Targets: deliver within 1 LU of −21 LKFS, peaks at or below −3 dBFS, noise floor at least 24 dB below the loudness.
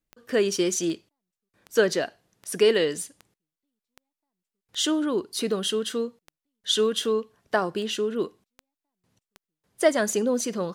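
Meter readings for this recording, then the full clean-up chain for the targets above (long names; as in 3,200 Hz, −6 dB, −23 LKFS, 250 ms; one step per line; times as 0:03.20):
number of clicks 14; integrated loudness −25.5 LKFS; sample peak −8.0 dBFS; target loudness −21.0 LKFS
→ click removal
level +4.5 dB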